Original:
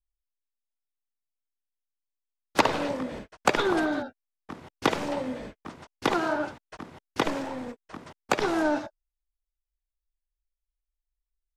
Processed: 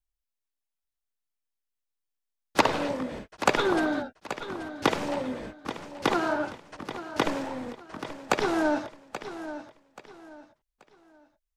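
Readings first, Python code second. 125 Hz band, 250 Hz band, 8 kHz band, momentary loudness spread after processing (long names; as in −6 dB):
+0.5 dB, +0.5 dB, +0.5 dB, 15 LU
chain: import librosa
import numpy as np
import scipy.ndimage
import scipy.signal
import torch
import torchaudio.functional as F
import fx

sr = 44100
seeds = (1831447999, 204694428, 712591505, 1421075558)

y = fx.echo_feedback(x, sr, ms=831, feedback_pct=30, wet_db=-12.0)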